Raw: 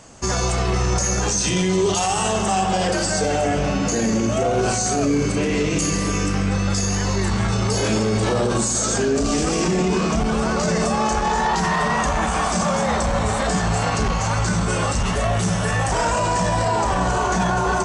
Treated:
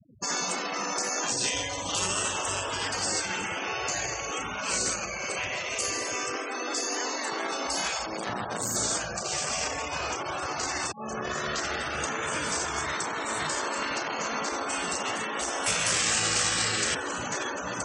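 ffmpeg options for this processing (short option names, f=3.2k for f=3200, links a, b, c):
-filter_complex "[0:a]asettb=1/sr,asplit=3[a][b][c];[a]atrim=end=1.224[d];[b]atrim=start=1.22:end=1.91,asetpts=PTS-STARTPTS,afade=t=in:d=0.004:c=qsin,afade=t=out:st=0.686:d=0.004:c=qsin,bandreject=f=1.3k:w=10[e];[c]atrim=start=1.906[f];[d][e]acrossfade=d=0.004:c1=hsin:c2=qsin[g];[g][f]acrossfade=d=0.004:c1=qsin:c2=hsin,asettb=1/sr,asplit=3[h][i][j];[h]atrim=end=3.154[k];[i]atrim=start=3.15:end=5.49,asetpts=PTS-STARTPTS,afade=t=in:d=0.004:c=qsin,afade=t=out:st=2.336:d=0.004:c=qsin,equalizer=f=2.5k:t=o:w=0.77:g=4[l];[j]atrim=start=5.486[m];[k][l]acrossfade=d=0.004:c1=hsin:c2=qsin[n];[n][m]acrossfade=d=0.004:c1=qsin:c2=hsin,asettb=1/sr,asplit=3[o][p][q];[o]atrim=end=8.064[r];[p]atrim=start=8.06:end=8.76,asetpts=PTS-STARTPTS,afade=t=in:d=0.004:c=qsin,afade=t=out:st=0.696:d=0.004:c=qsin,aeval=exprs='max(val(0),0)':c=same[s];[q]atrim=start=8.756[t];[r][s]acrossfade=d=0.004:c1=hsin:c2=qsin[u];[u][t]acrossfade=d=0.004:c1=qsin:c2=hsin,asplit=3[v][w][x];[v]afade=t=out:st=13.74:d=0.02[y];[w]lowpass=6.7k,afade=t=in:st=13.74:d=0.02,afade=t=out:st=14.68:d=0.02[z];[x]afade=t=in:st=14.68:d=0.02[aa];[y][z][aa]amix=inputs=3:normalize=0,asettb=1/sr,asplit=3[ab][ac][ad];[ab]atrim=end=15.664[ae];[ac]atrim=start=15.66:end=16.95,asetpts=PTS-STARTPTS,afade=t=in:d=0.004:c=qsin,afade=t=out:st=1.286:d=0.004:c=qsin,tiltshelf=f=660:g=-9.5[af];[ad]atrim=start=16.946[ag];[ae][af]acrossfade=d=0.004:c1=hsin:c2=qsin[ah];[ah][ag]acrossfade=d=0.004:c1=qsin:c2=hsin,asplit=2[ai][aj];[ai]atrim=end=10.92,asetpts=PTS-STARTPTS,afade=t=out:st=10.916:d=0.004:c=hsin[ak];[aj]atrim=start=10.92,asetpts=PTS-STARTPTS,afade=t=in:d=0.47[al];[ak][al]concat=n=2:v=0:a=1,afftfilt=real='re*lt(hypot(re,im),0.224)':imag='im*lt(hypot(re,im),0.224)':win_size=1024:overlap=0.75,highpass=f=64:w=0.5412,highpass=f=64:w=1.3066,afftfilt=real='re*gte(hypot(re,im),0.0251)':imag='im*gte(hypot(re,im),0.0251)':win_size=1024:overlap=0.75,volume=-3dB"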